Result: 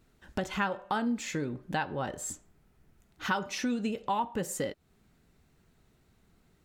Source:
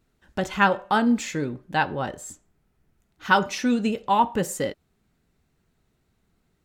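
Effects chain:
downward compressor 3 to 1, threshold −36 dBFS, peak gain reduction 17 dB
level +3.5 dB

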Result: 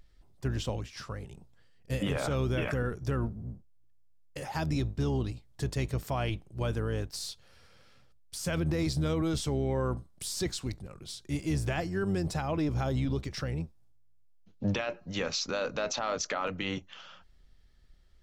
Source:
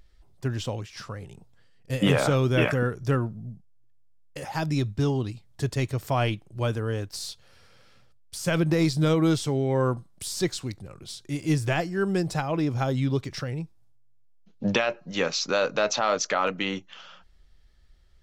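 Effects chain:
sub-octave generator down 1 octave, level −5 dB
brickwall limiter −19 dBFS, peak gain reduction 10 dB
level −3 dB

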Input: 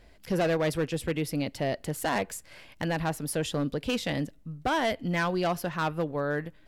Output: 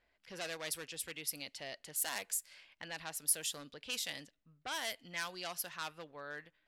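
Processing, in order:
first-order pre-emphasis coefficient 0.97
low-pass that shuts in the quiet parts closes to 1,700 Hz, open at −37 dBFS
level +2.5 dB

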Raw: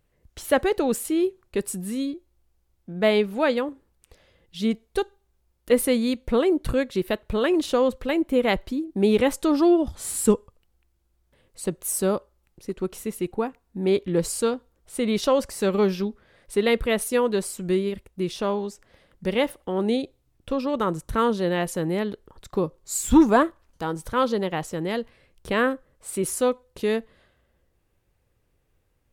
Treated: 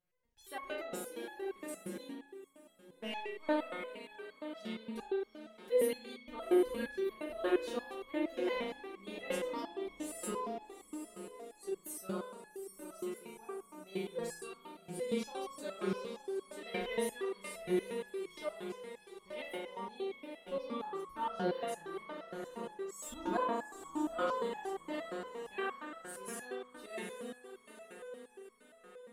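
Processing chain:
feedback delay with all-pass diffusion 813 ms, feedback 48%, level −8.5 dB
0:02.12–0:03.44: power curve on the samples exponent 1.4
low-shelf EQ 130 Hz −11.5 dB
spring reverb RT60 1.1 s, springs 36 ms, chirp 25 ms, DRR −3 dB
step-sequenced resonator 8.6 Hz 180–1,100 Hz
level −2.5 dB

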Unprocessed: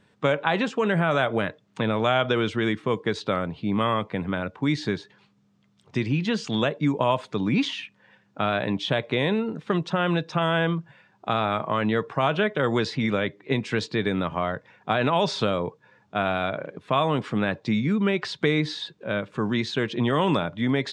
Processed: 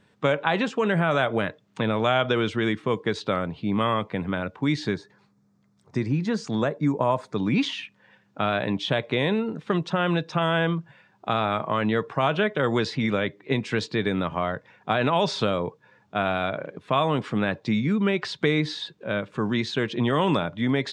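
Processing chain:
0:04.94–0:07.36: parametric band 3,000 Hz −14 dB 0.68 octaves

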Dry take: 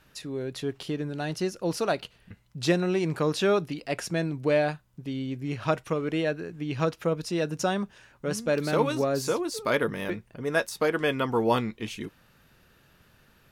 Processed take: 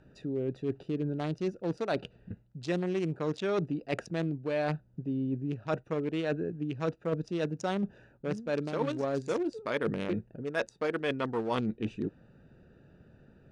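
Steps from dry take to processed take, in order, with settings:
adaptive Wiener filter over 41 samples
low-pass filter 8,700 Hz 24 dB per octave
low-shelf EQ 76 Hz −9.5 dB
reversed playback
downward compressor 6 to 1, threshold −37 dBFS, peak gain reduction 17 dB
reversed playback
level +8 dB

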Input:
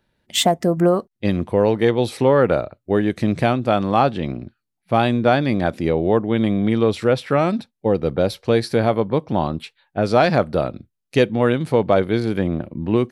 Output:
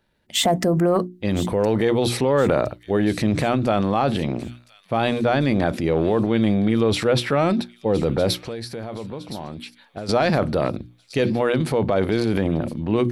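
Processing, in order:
mains-hum notches 60/120/180/240/300/360 Hz
brickwall limiter −9.5 dBFS, peak gain reduction 6.5 dB
transient designer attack −1 dB, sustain +8 dB
0:08.37–0:10.09: downward compressor 3 to 1, threshold −33 dBFS, peak gain reduction 13.5 dB
delay with a high-pass on its return 1,015 ms, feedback 48%, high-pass 3,200 Hz, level −13 dB

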